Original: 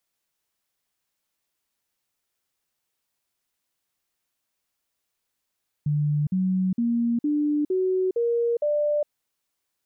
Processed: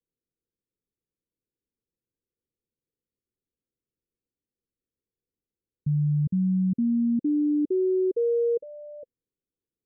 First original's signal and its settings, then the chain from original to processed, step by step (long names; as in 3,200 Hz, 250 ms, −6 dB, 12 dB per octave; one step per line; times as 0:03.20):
stepped sweep 148 Hz up, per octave 3, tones 7, 0.41 s, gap 0.05 s −20 dBFS
Butterworth low-pass 520 Hz 96 dB per octave